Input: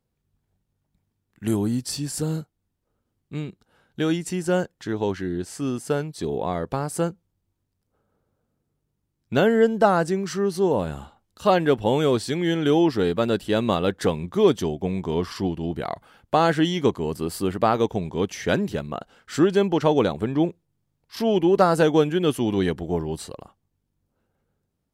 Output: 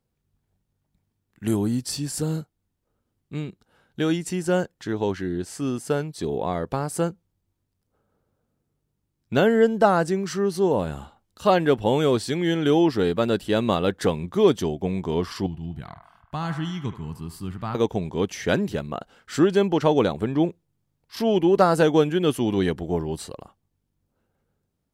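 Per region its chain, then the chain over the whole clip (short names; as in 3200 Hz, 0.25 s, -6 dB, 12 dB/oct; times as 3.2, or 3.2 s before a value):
15.46–17.75 EQ curve 150 Hz 0 dB, 510 Hz -22 dB, 960 Hz -10 dB + narrowing echo 74 ms, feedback 70%, band-pass 1200 Hz, level -8 dB
whole clip: dry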